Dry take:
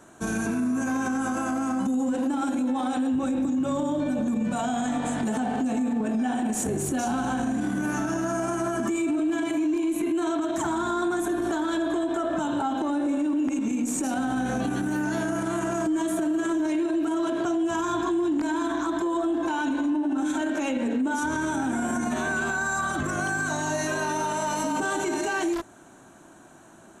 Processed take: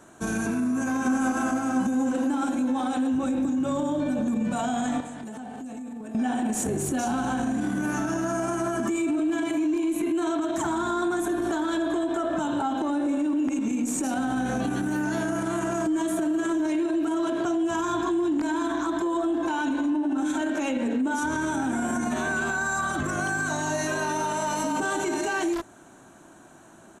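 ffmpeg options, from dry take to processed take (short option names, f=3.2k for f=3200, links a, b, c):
-filter_complex "[0:a]asplit=2[a][b];[b]afade=t=in:st=0.67:d=0.01,afade=t=out:st=1.16:d=0.01,aecho=0:1:350|700|1050|1400|1750|2100|2450|2800|3150|3500|3850|4200:0.668344|0.467841|0.327489|0.229242|0.160469|0.112329|0.07863|0.055041|0.0385287|0.0269701|0.0188791|0.0132153[c];[a][c]amix=inputs=2:normalize=0,asettb=1/sr,asplit=3[d][e][f];[d]atrim=end=5.004[g];[e]atrim=start=5:end=6.15,asetpts=PTS-STARTPTS,afade=t=in:d=0.004:c=qsin,afade=t=out:st=1.146:d=0.004:c=qsin,acrossover=split=130|7600[h][i][j];[h]acompressor=threshold=-57dB:ratio=4[k];[i]acompressor=threshold=-38dB:ratio=4[l];[j]acompressor=threshold=-58dB:ratio=4[m];[k][l][m]amix=inputs=3:normalize=0[n];[f]atrim=start=6.146[o];[g][n]acrossfade=d=0.004:c1=hsin:c2=qsin[p];[p][o]acrossfade=d=0.004:c1=qsin:c2=hsin"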